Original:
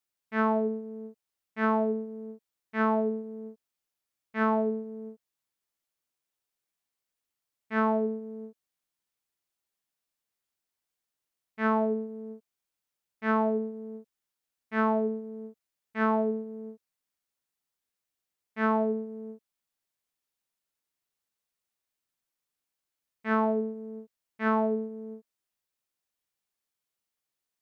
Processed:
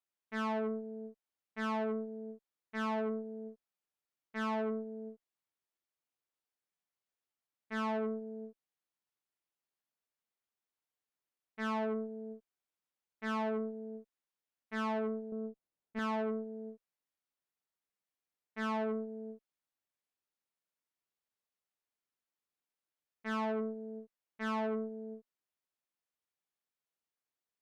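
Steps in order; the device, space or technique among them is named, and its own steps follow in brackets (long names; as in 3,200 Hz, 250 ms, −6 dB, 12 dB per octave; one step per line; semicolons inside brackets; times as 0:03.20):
0:15.32–0:15.99: tilt shelving filter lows +6.5 dB, about 930 Hz
tube preamp driven hard (tube saturation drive 30 dB, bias 0.65; low-shelf EQ 150 Hz −7 dB; high-shelf EQ 3,400 Hz −9 dB)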